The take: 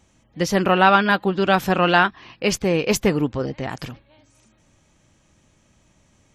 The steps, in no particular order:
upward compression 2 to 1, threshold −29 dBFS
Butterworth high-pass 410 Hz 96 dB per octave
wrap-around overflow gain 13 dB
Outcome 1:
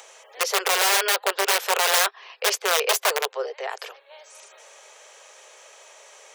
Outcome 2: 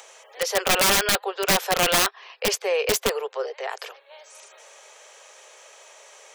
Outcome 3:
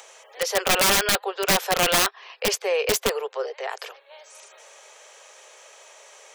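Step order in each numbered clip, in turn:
wrap-around overflow, then Butterworth high-pass, then upward compression
Butterworth high-pass, then upward compression, then wrap-around overflow
Butterworth high-pass, then wrap-around overflow, then upward compression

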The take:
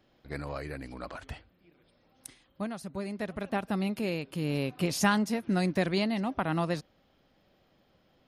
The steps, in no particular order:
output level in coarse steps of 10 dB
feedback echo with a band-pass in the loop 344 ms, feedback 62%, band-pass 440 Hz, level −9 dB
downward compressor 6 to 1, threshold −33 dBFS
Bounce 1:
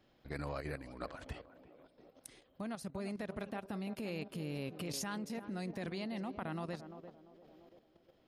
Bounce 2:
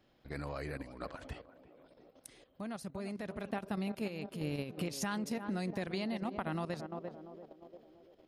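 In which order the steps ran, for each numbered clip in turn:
downward compressor, then feedback echo with a band-pass in the loop, then output level in coarse steps
feedback echo with a band-pass in the loop, then output level in coarse steps, then downward compressor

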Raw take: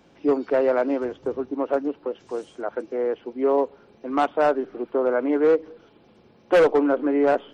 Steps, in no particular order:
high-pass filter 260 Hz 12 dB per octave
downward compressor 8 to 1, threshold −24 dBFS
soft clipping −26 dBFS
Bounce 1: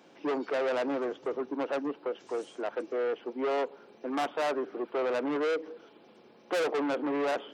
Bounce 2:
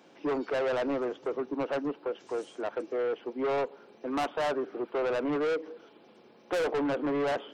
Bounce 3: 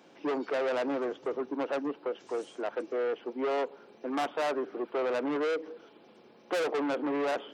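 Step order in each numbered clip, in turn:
soft clipping, then downward compressor, then high-pass filter
high-pass filter, then soft clipping, then downward compressor
soft clipping, then high-pass filter, then downward compressor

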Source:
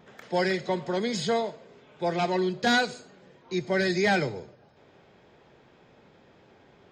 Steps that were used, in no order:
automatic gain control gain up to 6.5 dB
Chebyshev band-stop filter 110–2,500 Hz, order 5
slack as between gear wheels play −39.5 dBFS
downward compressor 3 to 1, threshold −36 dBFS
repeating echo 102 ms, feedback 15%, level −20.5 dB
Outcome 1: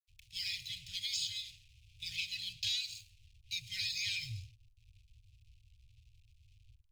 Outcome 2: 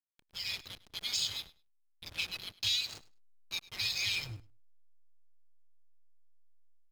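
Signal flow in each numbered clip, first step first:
automatic gain control, then repeating echo, then slack as between gear wheels, then Chebyshev band-stop filter, then downward compressor
Chebyshev band-stop filter, then slack as between gear wheels, then downward compressor, then automatic gain control, then repeating echo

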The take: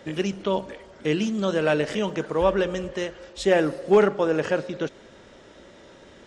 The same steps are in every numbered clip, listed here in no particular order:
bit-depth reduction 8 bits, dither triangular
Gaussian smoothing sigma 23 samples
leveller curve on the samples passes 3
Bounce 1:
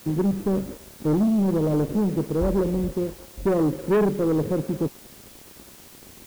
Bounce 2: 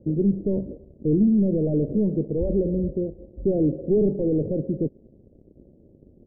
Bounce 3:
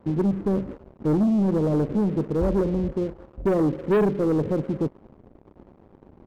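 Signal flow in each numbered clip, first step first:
Gaussian smoothing, then leveller curve on the samples, then bit-depth reduction
leveller curve on the samples, then bit-depth reduction, then Gaussian smoothing
bit-depth reduction, then Gaussian smoothing, then leveller curve on the samples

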